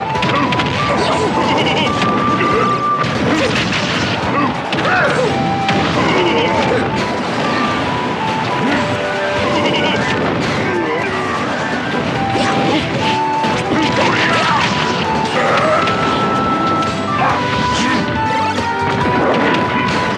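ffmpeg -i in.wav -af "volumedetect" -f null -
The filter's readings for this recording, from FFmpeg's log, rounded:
mean_volume: -15.1 dB
max_volume: -1.7 dB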